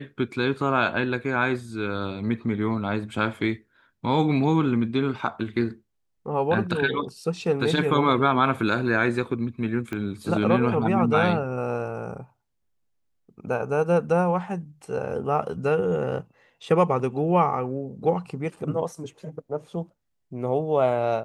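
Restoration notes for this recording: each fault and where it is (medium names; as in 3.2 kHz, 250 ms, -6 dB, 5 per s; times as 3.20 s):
9.93 s: pop -19 dBFS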